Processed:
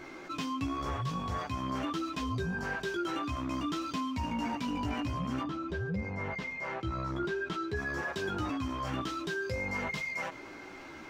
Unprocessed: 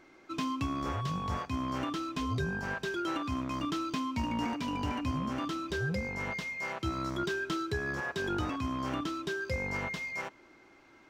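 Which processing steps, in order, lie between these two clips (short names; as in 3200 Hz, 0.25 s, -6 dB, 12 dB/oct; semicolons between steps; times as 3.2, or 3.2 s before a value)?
5.41–7.75 LPF 1000 Hz -> 2500 Hz 6 dB/oct; chorus voices 2, 0.5 Hz, delay 14 ms, depth 3.8 ms; fast leveller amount 50%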